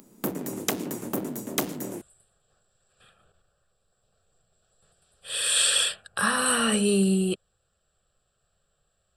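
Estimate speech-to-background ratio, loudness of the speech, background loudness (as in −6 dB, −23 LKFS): 8.5 dB, −23.0 LKFS, −31.5 LKFS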